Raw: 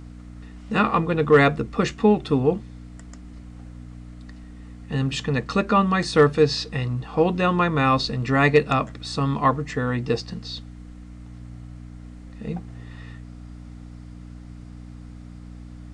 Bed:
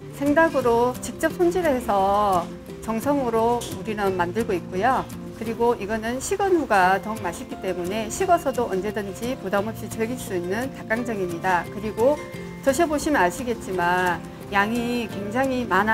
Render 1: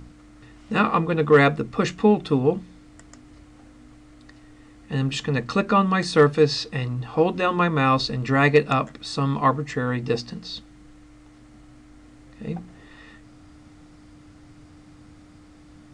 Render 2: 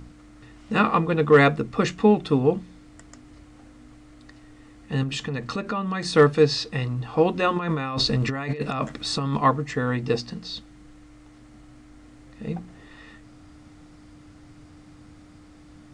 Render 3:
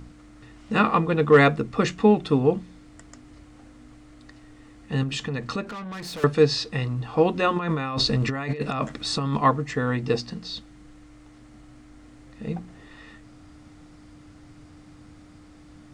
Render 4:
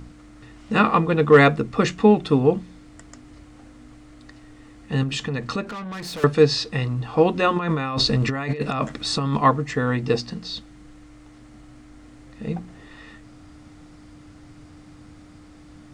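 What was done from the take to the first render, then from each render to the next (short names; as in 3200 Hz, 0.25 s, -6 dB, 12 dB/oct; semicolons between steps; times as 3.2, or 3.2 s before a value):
de-hum 60 Hz, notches 4
5.03–6.05 compressor 4:1, threshold -25 dBFS; 7.56–9.37 negative-ratio compressor -26 dBFS
5.64–6.24 tube stage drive 33 dB, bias 0.35
gain +2.5 dB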